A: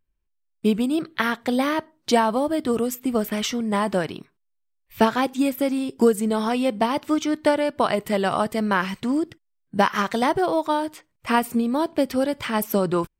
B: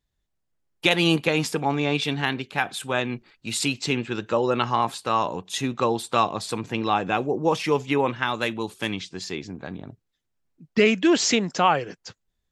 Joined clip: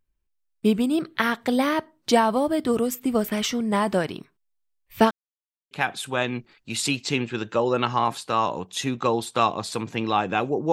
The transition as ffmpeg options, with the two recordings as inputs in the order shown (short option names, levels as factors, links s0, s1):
-filter_complex "[0:a]apad=whole_dur=10.72,atrim=end=10.72,asplit=2[s0][s1];[s0]atrim=end=5.11,asetpts=PTS-STARTPTS,afade=t=out:st=5.106:d=0.004:c=hsin[s2];[s1]atrim=start=5.11:end=5.71,asetpts=PTS-STARTPTS,volume=0[s3];[1:a]atrim=start=2.48:end=7.49,asetpts=PTS-STARTPTS,afade=t=in:d=0.004:c=hsin[s4];[s2][s3][s4]concat=n=3:v=0:a=1"